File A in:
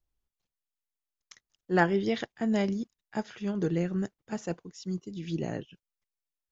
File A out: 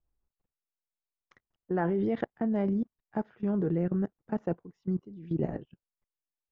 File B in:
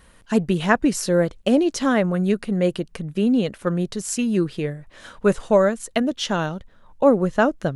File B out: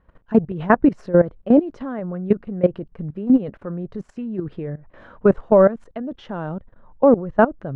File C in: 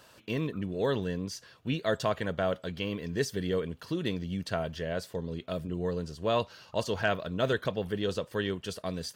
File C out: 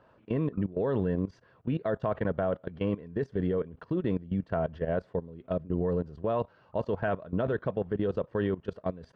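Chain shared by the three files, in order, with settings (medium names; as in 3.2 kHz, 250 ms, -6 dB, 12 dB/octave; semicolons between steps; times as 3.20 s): low-pass 1.2 kHz 12 dB/octave; level held to a coarse grid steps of 17 dB; trim +6.5 dB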